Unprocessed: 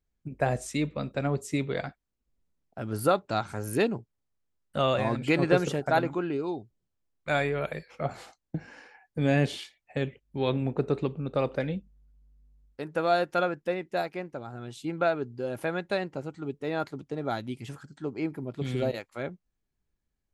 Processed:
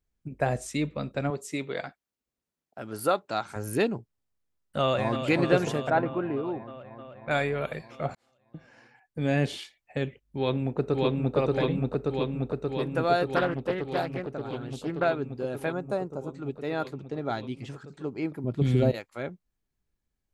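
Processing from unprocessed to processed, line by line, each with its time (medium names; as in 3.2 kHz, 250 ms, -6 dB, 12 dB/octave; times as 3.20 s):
1.30–3.56 s: high-pass 340 Hz 6 dB/octave
4.81–5.27 s: echo throw 310 ms, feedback 80%, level -8.5 dB
5.90–7.31 s: low-pass 2 kHz
8.15–9.56 s: fade in
10.23–11.36 s: echo throw 580 ms, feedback 80%, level 0 dB
13.36–15.05 s: loudspeaker Doppler distortion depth 0.35 ms
15.72–16.35 s: high-order bell 2.7 kHz -14 dB
16.93–17.87 s: low-pass 6.7 kHz
18.44–18.93 s: bass shelf 360 Hz +10.5 dB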